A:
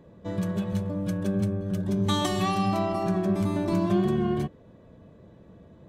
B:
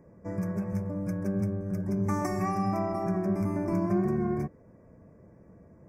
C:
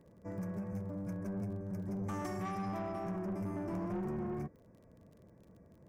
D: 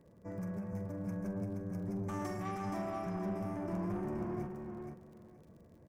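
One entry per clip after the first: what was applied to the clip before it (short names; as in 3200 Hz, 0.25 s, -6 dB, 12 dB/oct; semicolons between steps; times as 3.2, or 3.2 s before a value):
elliptic band-stop 2300–5100 Hz, stop band 40 dB; dynamic EQ 8000 Hz, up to -6 dB, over -59 dBFS, Q 1.5; gain -3 dB
soft clip -27.5 dBFS, distortion -12 dB; crackle 35/s -48 dBFS; gain -6 dB
doubler 44 ms -13 dB; on a send: feedback echo 0.474 s, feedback 20%, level -5.5 dB; on the sum: gain -1 dB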